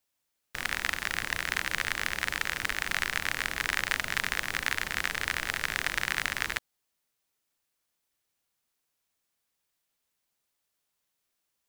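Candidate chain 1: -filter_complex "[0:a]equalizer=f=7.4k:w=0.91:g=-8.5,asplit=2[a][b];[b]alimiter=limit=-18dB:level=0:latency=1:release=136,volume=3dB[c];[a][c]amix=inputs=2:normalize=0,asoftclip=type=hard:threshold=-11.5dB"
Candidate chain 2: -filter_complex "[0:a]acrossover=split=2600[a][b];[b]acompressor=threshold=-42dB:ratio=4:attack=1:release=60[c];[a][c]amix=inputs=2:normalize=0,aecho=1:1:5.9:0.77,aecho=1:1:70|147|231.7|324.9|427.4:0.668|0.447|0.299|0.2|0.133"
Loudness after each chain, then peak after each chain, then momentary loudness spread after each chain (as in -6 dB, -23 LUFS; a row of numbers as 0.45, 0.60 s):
-27.0, -28.0 LUFS; -11.5, -9.5 dBFS; 1, 4 LU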